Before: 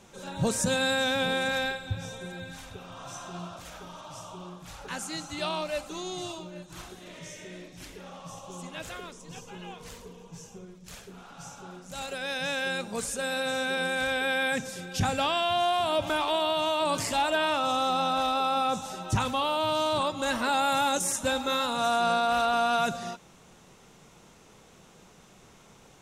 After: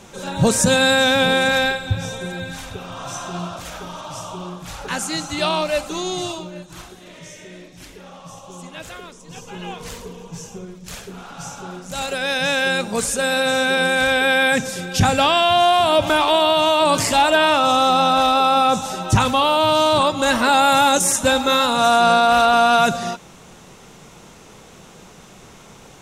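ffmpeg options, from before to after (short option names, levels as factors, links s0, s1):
-af "volume=7.94,afade=t=out:st=6.14:d=0.76:silence=0.446684,afade=t=in:st=9.25:d=0.45:silence=0.446684"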